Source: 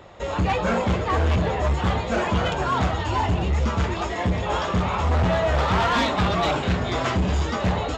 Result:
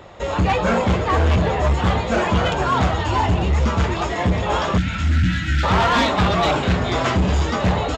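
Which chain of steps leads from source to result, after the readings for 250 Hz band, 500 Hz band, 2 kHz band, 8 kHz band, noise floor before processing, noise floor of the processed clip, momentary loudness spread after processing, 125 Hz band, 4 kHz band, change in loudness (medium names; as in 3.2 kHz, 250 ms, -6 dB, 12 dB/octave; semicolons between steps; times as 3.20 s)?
+4.0 dB, +3.0 dB, +4.0 dB, no reading, -29 dBFS, -25 dBFS, 3 LU, +4.0 dB, +4.0 dB, +4.0 dB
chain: spectral selection erased 4.78–5.64 s, 340–1300 Hz; frequency-shifting echo 405 ms, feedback 47%, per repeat +69 Hz, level -21.5 dB; trim +4 dB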